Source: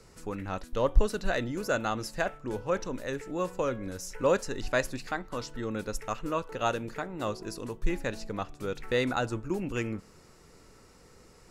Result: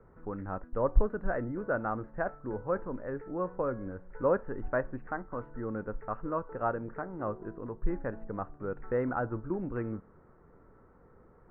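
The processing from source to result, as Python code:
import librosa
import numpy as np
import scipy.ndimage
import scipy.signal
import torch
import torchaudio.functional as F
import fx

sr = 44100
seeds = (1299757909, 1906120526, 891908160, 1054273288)

y = scipy.signal.sosfilt(scipy.signal.butter(6, 1600.0, 'lowpass', fs=sr, output='sos'), x)
y = F.gain(torch.from_numpy(y), -2.0).numpy()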